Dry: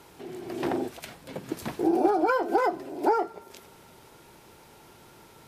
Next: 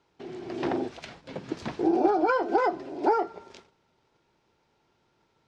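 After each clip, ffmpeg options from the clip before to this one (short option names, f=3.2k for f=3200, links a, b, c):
-af "lowpass=f=6k:w=0.5412,lowpass=f=6k:w=1.3066,agate=range=-17dB:threshold=-49dB:ratio=16:detection=peak"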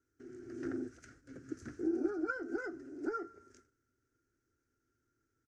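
-af "firequalizer=gain_entry='entry(110,0);entry(180,-17);entry(260,1);entry(600,-19);entry(950,-30);entry(1400,0);entry(2400,-18);entry(3600,-24);entry(6100,0)':delay=0.05:min_phase=1,volume=-6dB"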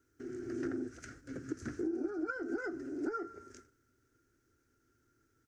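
-af "acompressor=threshold=-42dB:ratio=4,volume=7.5dB"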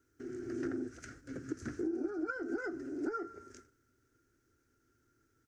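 -af anull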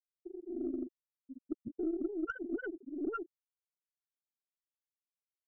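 -af "afftfilt=real='re*gte(hypot(re,im),0.0794)':imag='im*gte(hypot(re,im),0.0794)':win_size=1024:overlap=0.75,aeval=exprs='0.0501*(cos(1*acos(clip(val(0)/0.0501,-1,1)))-cos(1*PI/2))+0.00178*(cos(4*acos(clip(val(0)/0.0501,-1,1)))-cos(4*PI/2))':c=same,volume=1dB"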